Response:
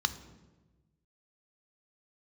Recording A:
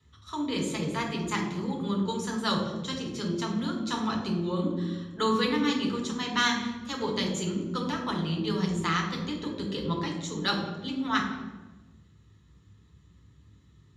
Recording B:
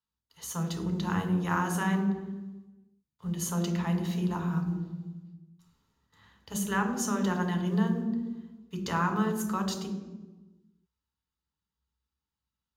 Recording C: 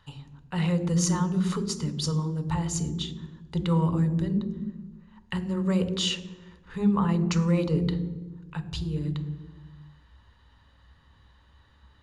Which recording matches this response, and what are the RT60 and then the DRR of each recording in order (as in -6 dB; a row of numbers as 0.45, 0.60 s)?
C; 1.2, 1.2, 1.2 s; -0.5, 4.0, 10.5 dB